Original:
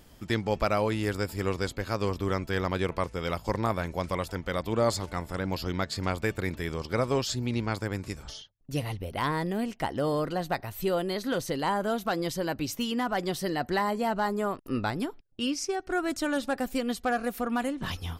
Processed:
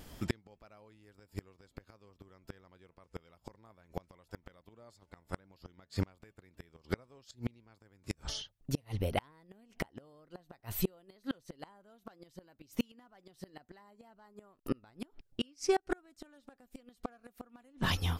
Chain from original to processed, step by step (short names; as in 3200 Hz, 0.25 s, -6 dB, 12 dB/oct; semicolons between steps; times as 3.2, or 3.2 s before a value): wow and flutter 28 cents; flipped gate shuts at -21 dBFS, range -35 dB; gain +3 dB